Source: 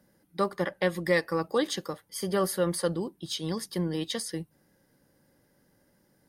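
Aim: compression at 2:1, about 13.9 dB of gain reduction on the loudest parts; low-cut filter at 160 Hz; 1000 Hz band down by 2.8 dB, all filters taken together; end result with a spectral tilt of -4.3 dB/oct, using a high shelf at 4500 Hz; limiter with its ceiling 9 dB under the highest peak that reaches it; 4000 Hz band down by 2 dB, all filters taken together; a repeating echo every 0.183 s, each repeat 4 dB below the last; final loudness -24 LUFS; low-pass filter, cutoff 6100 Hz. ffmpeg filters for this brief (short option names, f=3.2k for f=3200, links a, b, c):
-af "highpass=160,lowpass=6.1k,equalizer=f=1k:t=o:g=-3.5,equalizer=f=4k:t=o:g=-3,highshelf=f=4.5k:g=3,acompressor=threshold=-48dB:ratio=2,alimiter=level_in=11dB:limit=-24dB:level=0:latency=1,volume=-11dB,aecho=1:1:183|366|549|732|915|1098|1281|1464|1647:0.631|0.398|0.25|0.158|0.0994|0.0626|0.0394|0.0249|0.0157,volume=20dB"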